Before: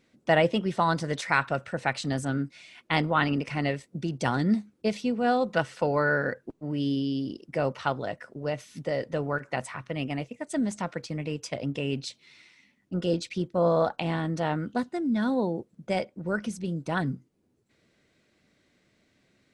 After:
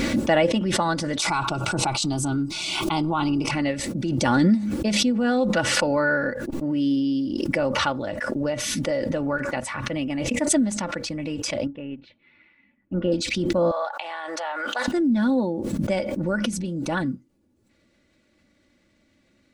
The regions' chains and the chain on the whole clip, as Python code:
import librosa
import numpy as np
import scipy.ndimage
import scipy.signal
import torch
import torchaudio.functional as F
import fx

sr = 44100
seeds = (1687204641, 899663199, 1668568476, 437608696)

y = fx.chain(x, sr, fx.fixed_phaser(hz=360.0, stages=8),
    fx.env_flatten(amount_pct=70), at=(1.19, 3.51))
y = fx.chain(y, sr, fx.lowpass(hz=2500.0, slope=24),
    fx.upward_expand(threshold_db=-50.0, expansion=2.5), at=(11.67, 13.12))
y = fx.chain(y, sr, fx.highpass(hz=690.0, slope=24),
    fx.high_shelf(hz=4600.0, db=-7.5), at=(13.71, 14.88))
y = fx.low_shelf(y, sr, hz=200.0, db=6.5)
y = y + 0.59 * np.pad(y, (int(3.5 * sr / 1000.0), 0))[:len(y)]
y = fx.pre_swell(y, sr, db_per_s=21.0)